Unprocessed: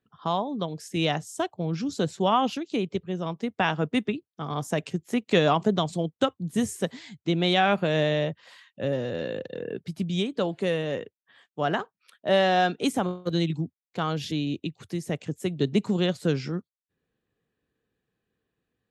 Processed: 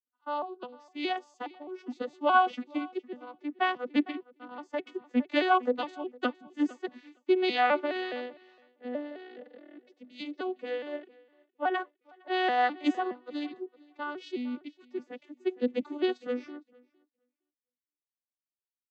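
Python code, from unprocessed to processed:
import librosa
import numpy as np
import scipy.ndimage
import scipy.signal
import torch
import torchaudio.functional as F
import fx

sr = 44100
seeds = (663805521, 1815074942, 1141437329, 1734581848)

p1 = fx.vocoder_arp(x, sr, chord='minor triad', root=59, every_ms=208)
p2 = scipy.signal.sosfilt(scipy.signal.butter(2, 2400.0, 'lowpass', fs=sr, output='sos'), p1)
p3 = fx.tilt_eq(p2, sr, slope=4.5)
p4 = p3 + fx.echo_feedback(p3, sr, ms=460, feedback_pct=28, wet_db=-17.5, dry=0)
y = fx.band_widen(p4, sr, depth_pct=70)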